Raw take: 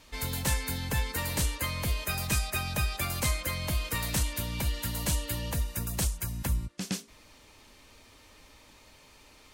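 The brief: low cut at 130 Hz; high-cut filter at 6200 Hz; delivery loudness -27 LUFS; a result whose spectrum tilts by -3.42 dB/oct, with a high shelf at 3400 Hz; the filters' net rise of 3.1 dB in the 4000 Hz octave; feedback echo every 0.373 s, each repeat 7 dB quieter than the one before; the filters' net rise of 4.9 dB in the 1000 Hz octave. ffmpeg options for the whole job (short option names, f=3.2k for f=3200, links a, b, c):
-af "highpass=130,lowpass=6.2k,equalizer=f=1k:t=o:g=6,highshelf=f=3.4k:g=-5.5,equalizer=f=4k:t=o:g=8,aecho=1:1:373|746|1119|1492|1865:0.447|0.201|0.0905|0.0407|0.0183,volume=5dB"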